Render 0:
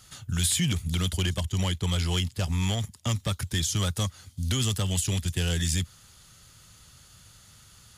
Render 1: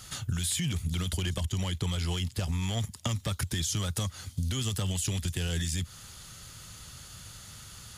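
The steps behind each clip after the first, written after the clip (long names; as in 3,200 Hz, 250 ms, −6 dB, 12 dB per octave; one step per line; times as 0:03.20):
brickwall limiter −22 dBFS, peak gain reduction 8 dB
downward compressor, threshold −34 dBFS, peak gain reduction 8 dB
level +6.5 dB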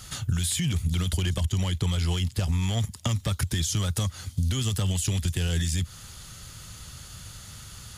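low-shelf EQ 120 Hz +5 dB
level +2.5 dB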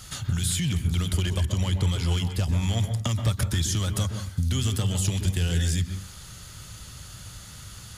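convolution reverb RT60 0.35 s, pre-delay 118 ms, DRR 7 dB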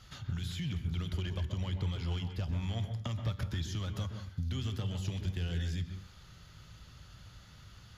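moving average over 5 samples
tuned comb filter 53 Hz, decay 0.82 s, harmonics odd, mix 50%
level −4.5 dB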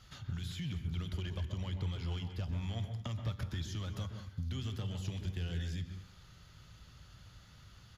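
single-tap delay 217 ms −18.5 dB
level −3 dB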